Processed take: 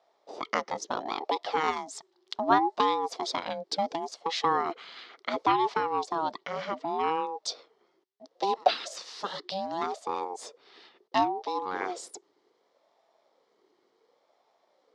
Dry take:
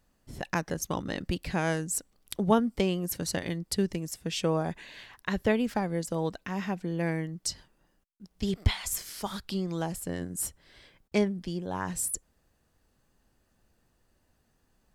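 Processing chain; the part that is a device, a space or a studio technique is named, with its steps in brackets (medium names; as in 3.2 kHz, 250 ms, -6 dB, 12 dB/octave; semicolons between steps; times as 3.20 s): 1.71–2.39 s: peaking EQ 70 Hz -14.5 dB 2.5 oct; voice changer toy (ring modulator with a swept carrier 510 Hz, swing 30%, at 0.69 Hz; cabinet simulation 440–5000 Hz, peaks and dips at 600 Hz -6 dB, 1.5 kHz -7 dB, 2.5 kHz -9 dB); trim +8 dB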